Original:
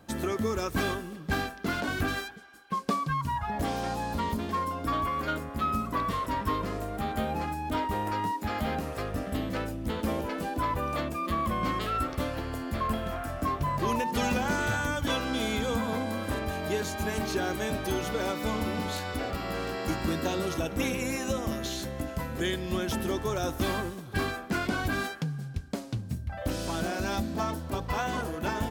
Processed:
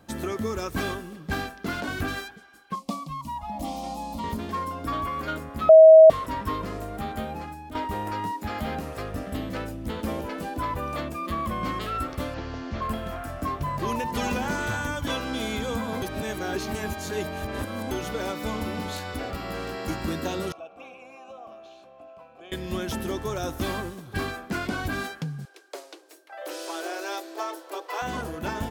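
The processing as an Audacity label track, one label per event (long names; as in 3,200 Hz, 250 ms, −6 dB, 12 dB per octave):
2.750000	4.240000	phaser with its sweep stopped centre 420 Hz, stages 6
5.690000	6.100000	beep over 638 Hz −6.5 dBFS
7.010000	7.750000	fade out, to −9.5 dB
12.340000	12.820000	linear delta modulator 32 kbit/s, step −45 dBFS
13.600000	14.050000	delay throw 430 ms, feedback 50%, level −10 dB
16.020000	17.910000	reverse
20.520000	22.520000	formant filter a
25.450000	28.020000	Butterworth high-pass 320 Hz 96 dB per octave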